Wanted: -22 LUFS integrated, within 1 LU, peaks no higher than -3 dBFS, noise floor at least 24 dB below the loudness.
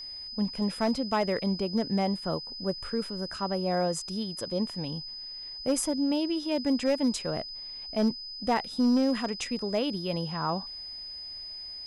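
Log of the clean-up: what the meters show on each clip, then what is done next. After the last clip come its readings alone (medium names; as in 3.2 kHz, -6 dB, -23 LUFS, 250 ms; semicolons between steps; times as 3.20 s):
clipped samples 0.5%; clipping level -19.0 dBFS; steady tone 5 kHz; tone level -38 dBFS; loudness -30.0 LUFS; peak level -19.0 dBFS; loudness target -22.0 LUFS
-> clip repair -19 dBFS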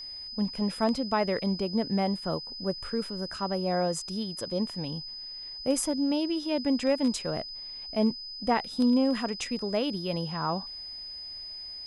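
clipped samples 0.0%; steady tone 5 kHz; tone level -38 dBFS
-> band-stop 5 kHz, Q 30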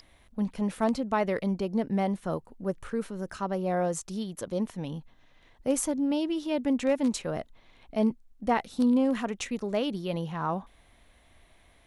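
steady tone not found; loudness -30.0 LUFS; peak level -12.5 dBFS; loudness target -22.0 LUFS
-> trim +8 dB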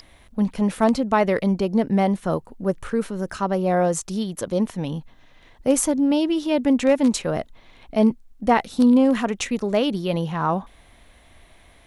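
loudness -22.0 LUFS; peak level -4.5 dBFS; noise floor -52 dBFS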